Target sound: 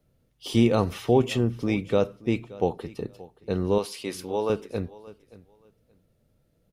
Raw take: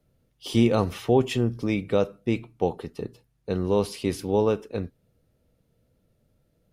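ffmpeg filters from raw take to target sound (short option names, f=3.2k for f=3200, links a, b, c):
-filter_complex "[0:a]asettb=1/sr,asplit=3[a][b][c];[a]atrim=end=3.784[d];[b]atrim=start=3.78:end=4.5,asetpts=PTS-STARTPTS,afade=t=in:d=0.004:c=qsin,afade=t=out:st=0.716:d=0.004:c=qsin,highpass=f=630:p=1[e];[c]atrim=start=4.496[f];[d][e]acrossfade=d=0.004:c1=hsin:c2=qsin[g];[g][f]acrossfade=d=0.004:c1=qsin:c2=hsin,asplit=2[h][i];[i]aecho=0:1:576|1152:0.1|0.02[j];[h][j]amix=inputs=2:normalize=0"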